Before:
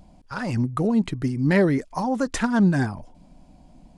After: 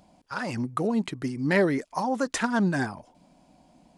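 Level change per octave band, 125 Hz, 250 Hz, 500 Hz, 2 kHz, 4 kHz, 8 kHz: -8.0 dB, -5.5 dB, -2.0 dB, 0.0 dB, 0.0 dB, 0.0 dB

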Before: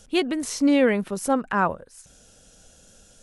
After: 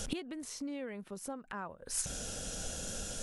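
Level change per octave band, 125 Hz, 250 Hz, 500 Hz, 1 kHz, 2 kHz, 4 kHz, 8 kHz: -10.0 dB, -19.0 dB, -19.5 dB, -19.5 dB, -17.5 dB, -9.0 dB, -1.5 dB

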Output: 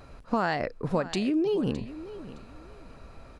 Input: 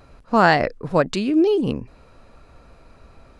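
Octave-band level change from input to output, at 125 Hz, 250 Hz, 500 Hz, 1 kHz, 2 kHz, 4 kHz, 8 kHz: -6.5 dB, -7.5 dB, -9.0 dB, -11.5 dB, -12.5 dB, -8.5 dB, -5.5 dB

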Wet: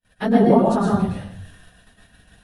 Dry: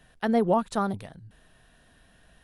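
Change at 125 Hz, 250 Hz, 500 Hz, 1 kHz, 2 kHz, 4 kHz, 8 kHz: +12.5 dB, +10.5 dB, +8.0 dB, +6.0 dB, +5.0 dB, +5.0 dB, +4.0 dB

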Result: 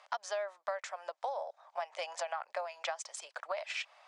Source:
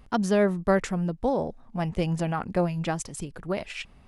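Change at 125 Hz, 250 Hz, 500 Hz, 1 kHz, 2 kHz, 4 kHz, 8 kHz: under -40 dB, under -40 dB, -12.0 dB, -6.5 dB, -6.5 dB, -3.0 dB, -6.0 dB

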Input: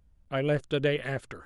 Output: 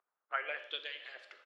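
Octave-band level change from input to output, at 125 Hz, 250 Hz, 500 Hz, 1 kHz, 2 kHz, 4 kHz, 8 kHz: under -40 dB, -35.5 dB, -20.0 dB, -2.0 dB, -4.5 dB, -3.0 dB, no reading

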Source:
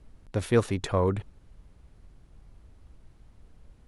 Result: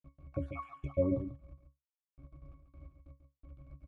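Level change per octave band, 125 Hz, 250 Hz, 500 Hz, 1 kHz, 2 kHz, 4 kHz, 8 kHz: -10.0 dB, -6.0 dB, -9.0 dB, -13.0 dB, -16.5 dB, under -25 dB, under -35 dB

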